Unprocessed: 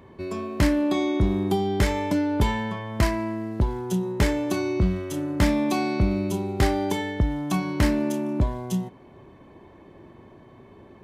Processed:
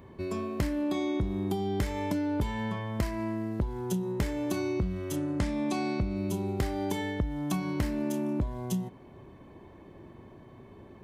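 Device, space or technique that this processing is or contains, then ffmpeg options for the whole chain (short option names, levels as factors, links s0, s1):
ASMR close-microphone chain: -filter_complex "[0:a]lowshelf=f=220:g=4.5,acompressor=threshold=0.0708:ratio=6,highshelf=f=9800:g=6,asettb=1/sr,asplit=3[s0][s1][s2];[s0]atrim=end=5.164[s3];[s1]atrim=start=5.16:end=6.17,asetpts=PTS-STARTPTS,afade=t=in:d=0.004:c=qsin,afade=t=out:st=1.006:d=0.004:c=qsin,lowpass=f=10000:w=0.5412,lowpass=f=10000:w=1.3066[s4];[s2]atrim=start=6.166[s5];[s3][s4]acrossfade=d=0.004:c1=hsin:c2=qsin[s6];[s6][s5]acrossfade=d=0.004:c1=qsin:c2=hsin,volume=0.668"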